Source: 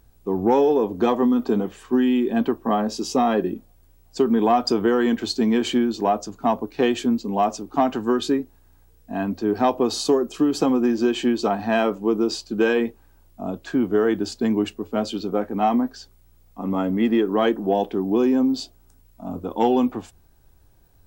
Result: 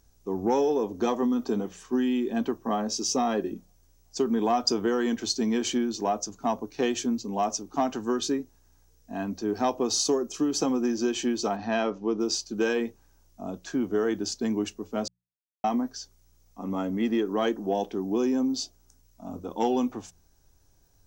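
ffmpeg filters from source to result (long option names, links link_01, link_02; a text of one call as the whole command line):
ffmpeg -i in.wav -filter_complex "[0:a]asettb=1/sr,asplit=3[link_01][link_02][link_03];[link_01]atrim=end=11.564[link_04];[link_02]atrim=start=11.56:end=12.2,asetpts=PTS-STARTPTS,afade=type=in:duration=0.004:curve=qsin,afade=type=out:start_time=0.636:duration=0.004:curve=qsin,lowpass=frequency=5300:width=0.5412,lowpass=frequency=5300:width=1.3066[link_05];[link_03]atrim=start=12.196[link_06];[link_04][link_05]acrossfade=duration=0.004:curve1=hsin:curve2=qsin[link_07];[link_07][link_06]acrossfade=duration=0.004:curve1=qsin:curve2=hsin,asplit=3[link_08][link_09][link_10];[link_08]atrim=end=15.08,asetpts=PTS-STARTPTS,afade=type=out:start_time=15.076:duration=0.004:curve=hsin[link_11];[link_09]atrim=start=15.08:end=15.64,asetpts=PTS-STARTPTS,volume=0[link_12];[link_10]atrim=start=15.64,asetpts=PTS-STARTPTS,afade=type=in:duration=0.004:curve=hsin[link_13];[link_11][link_12][link_13]concat=n=3:v=0:a=1,equalizer=frequency=6000:width_type=o:width=0.57:gain=14.5,bandreject=frequency=60:width_type=h:width=6,bandreject=frequency=120:width_type=h:width=6,bandreject=frequency=180:width_type=h:width=6,volume=-6.5dB" out.wav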